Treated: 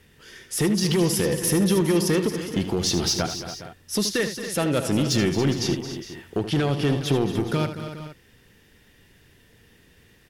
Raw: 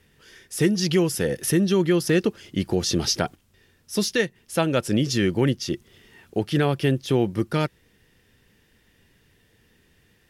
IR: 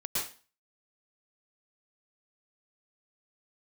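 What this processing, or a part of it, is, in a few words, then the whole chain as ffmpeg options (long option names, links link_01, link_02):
limiter into clipper: -filter_complex "[0:a]alimiter=limit=-16dB:level=0:latency=1:release=179,asoftclip=type=hard:threshold=-20.5dB,asettb=1/sr,asplit=3[link_01][link_02][link_03];[link_01]atrim=end=6.394[link_04];[link_02]atrim=start=6.39:end=6.9,asetpts=PTS-STARTPTS,afade=type=in:duration=0.004:curve=qsin,afade=type=out:start_time=0.506:duration=0.004:curve=qsin,lowpass=11000[link_05];[link_03]atrim=start=6.896[link_06];[link_04][link_05]acrossfade=duration=0.004:curve1=hsin:curve2=qsin[link_07];[link_07][link_06]acrossfade=duration=0.004:curve1=qsin:curve2=hsin,aecho=1:1:77|222|279|411|464:0.299|0.237|0.251|0.178|0.141,volume=4dB"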